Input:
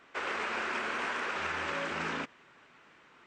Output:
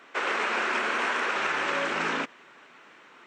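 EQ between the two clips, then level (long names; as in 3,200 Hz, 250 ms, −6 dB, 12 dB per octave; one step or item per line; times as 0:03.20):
high-pass filter 220 Hz 12 dB per octave
notch filter 4,800 Hz, Q 24
+7.0 dB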